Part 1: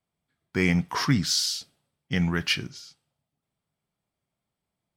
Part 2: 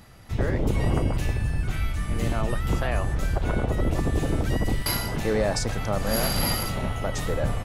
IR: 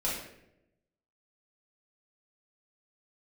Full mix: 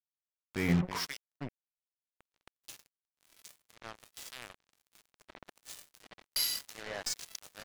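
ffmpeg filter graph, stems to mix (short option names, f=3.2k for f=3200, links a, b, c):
-filter_complex "[0:a]bandreject=f=183.4:t=h:w=4,bandreject=f=366.8:t=h:w=4,bandreject=f=550.2:t=h:w=4,bandreject=f=733.6:t=h:w=4,bandreject=f=917:t=h:w=4,bandreject=f=1.1004k:t=h:w=4,bandreject=f=1.2838k:t=h:w=4,bandreject=f=1.4672k:t=h:w=4,bandreject=f=1.6506k:t=h:w=4,bandreject=f=1.834k:t=h:w=4,volume=-3.5dB,asplit=3[a][b][c];[a]atrim=end=1.17,asetpts=PTS-STARTPTS,afade=t=out:st=1.166:d=0.004:c=hsin[d];[b]atrim=start=1.17:end=2.79,asetpts=PTS-STARTPTS,volume=0[e];[c]atrim=start=2.79,asetpts=PTS-STARTPTS,afade=t=in:d=0.004:c=hsin[f];[d][e][f]concat=n=3:v=0:a=1,asplit=3[g][h][i];[h]volume=-14.5dB[j];[1:a]bandpass=f=6.1k:t=q:w=0.78:csg=0,aeval=exprs='0.168*(cos(1*acos(clip(val(0)/0.168,-1,1)))-cos(1*PI/2))+0.00841*(cos(4*acos(clip(val(0)/0.168,-1,1)))-cos(4*PI/2))+0.00106*(cos(8*acos(clip(val(0)/0.168,-1,1)))-cos(8*PI/2))':c=same,adelay=1500,volume=3dB[k];[i]apad=whole_len=403110[l];[k][l]sidechaincompress=threshold=-44dB:ratio=4:attack=24:release=1220[m];[j]aecho=0:1:320:1[n];[g][m][n]amix=inputs=3:normalize=0,acompressor=mode=upward:threshold=-40dB:ratio=2.5,acrossover=split=2100[o][p];[o]aeval=exprs='val(0)*(1-1/2+1/2*cos(2*PI*1.3*n/s))':c=same[q];[p]aeval=exprs='val(0)*(1-1/2-1/2*cos(2*PI*1.3*n/s))':c=same[r];[q][r]amix=inputs=2:normalize=0,acrusher=bits=5:mix=0:aa=0.5"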